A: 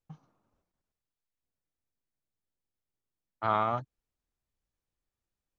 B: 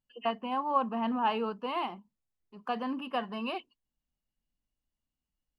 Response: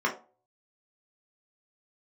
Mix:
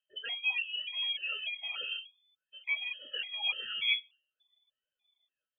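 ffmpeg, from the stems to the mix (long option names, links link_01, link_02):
-filter_complex "[0:a]adelay=150,volume=-5.5dB,asplit=2[link_01][link_02];[link_02]volume=-11.5dB[link_03];[1:a]acompressor=threshold=-38dB:ratio=6,volume=1dB,asplit=3[link_04][link_05][link_06];[link_05]volume=-7dB[link_07];[link_06]apad=whole_len=253100[link_08];[link_01][link_08]sidechaincompress=threshold=-44dB:ratio=8:attack=16:release=511[link_09];[2:a]atrim=start_sample=2205[link_10];[link_03][link_07]amix=inputs=2:normalize=0[link_11];[link_11][link_10]afir=irnorm=-1:irlink=0[link_12];[link_09][link_04][link_12]amix=inputs=3:normalize=0,aphaser=in_gain=1:out_gain=1:delay=2.1:decay=0.7:speed=0.51:type=triangular,lowpass=frequency=3000:width_type=q:width=0.5098,lowpass=frequency=3000:width_type=q:width=0.6013,lowpass=frequency=3000:width_type=q:width=0.9,lowpass=frequency=3000:width_type=q:width=2.563,afreqshift=-3500,afftfilt=real='re*gt(sin(2*PI*1.7*pts/sr)*(1-2*mod(floor(b*sr/1024/640),2)),0)':imag='im*gt(sin(2*PI*1.7*pts/sr)*(1-2*mod(floor(b*sr/1024/640),2)),0)':win_size=1024:overlap=0.75"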